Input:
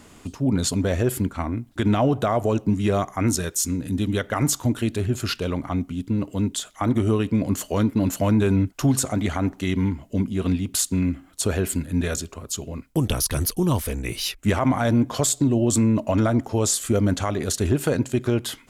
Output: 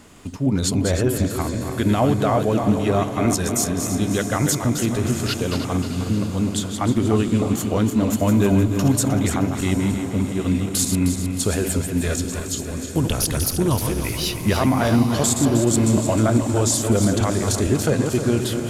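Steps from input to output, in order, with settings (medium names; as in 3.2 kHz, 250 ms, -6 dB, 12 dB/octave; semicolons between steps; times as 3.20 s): backward echo that repeats 155 ms, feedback 66%, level -6.5 dB; echo that smears into a reverb 751 ms, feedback 56%, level -12 dB; trim +1 dB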